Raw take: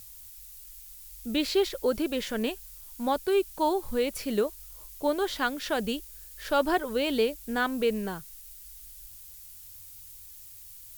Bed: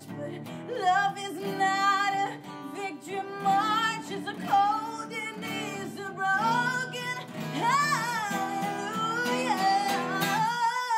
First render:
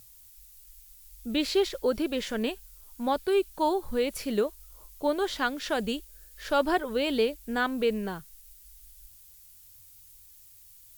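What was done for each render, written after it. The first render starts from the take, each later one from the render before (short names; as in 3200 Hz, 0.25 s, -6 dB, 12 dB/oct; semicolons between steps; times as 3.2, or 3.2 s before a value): noise print and reduce 6 dB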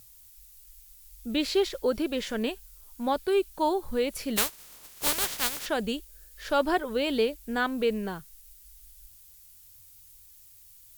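4.36–5.65 spectral contrast lowered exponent 0.21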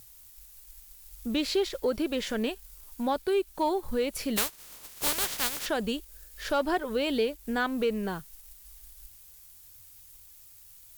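compressor 1.5:1, threshold -36 dBFS, peak gain reduction 6.5 dB; sample leveller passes 1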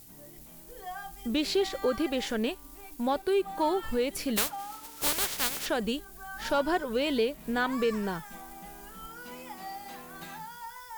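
add bed -16.5 dB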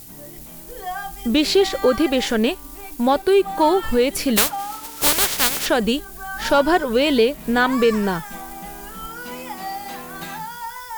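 gain +11 dB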